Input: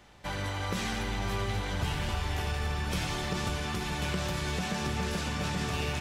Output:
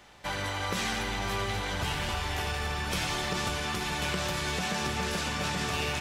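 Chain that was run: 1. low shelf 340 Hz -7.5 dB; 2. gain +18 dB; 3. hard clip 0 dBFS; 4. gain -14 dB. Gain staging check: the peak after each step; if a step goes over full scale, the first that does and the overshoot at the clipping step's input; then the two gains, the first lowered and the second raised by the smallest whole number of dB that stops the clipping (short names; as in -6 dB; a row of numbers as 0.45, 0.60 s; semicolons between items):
-20.5, -2.5, -2.5, -16.5 dBFS; no overload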